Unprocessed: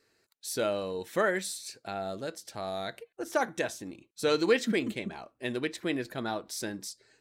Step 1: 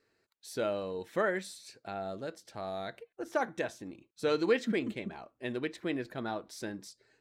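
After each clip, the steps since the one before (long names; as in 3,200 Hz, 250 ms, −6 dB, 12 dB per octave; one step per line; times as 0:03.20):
high-shelf EQ 4,600 Hz −11 dB
level −2.5 dB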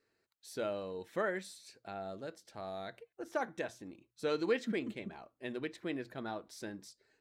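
mains-hum notches 60/120 Hz
level −4.5 dB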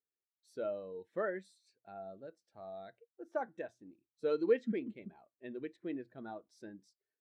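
every bin expanded away from the loudest bin 1.5 to 1
level +2 dB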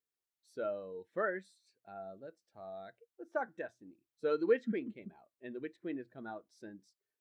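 dynamic equaliser 1,500 Hz, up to +6 dB, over −58 dBFS, Q 1.9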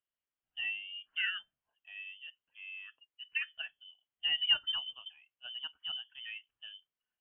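voice inversion scrambler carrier 3,300 Hz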